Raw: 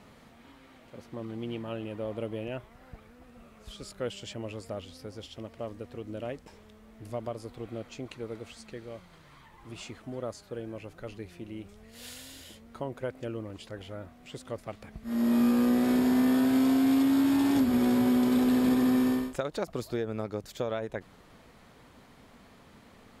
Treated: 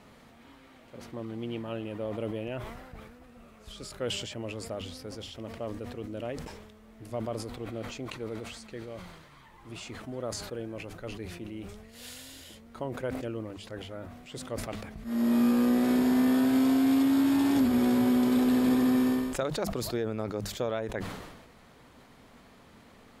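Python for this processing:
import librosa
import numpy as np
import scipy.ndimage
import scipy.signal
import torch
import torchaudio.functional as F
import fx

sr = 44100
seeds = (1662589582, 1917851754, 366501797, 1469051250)

y = fx.hum_notches(x, sr, base_hz=50, count=4)
y = fx.sustainer(y, sr, db_per_s=45.0)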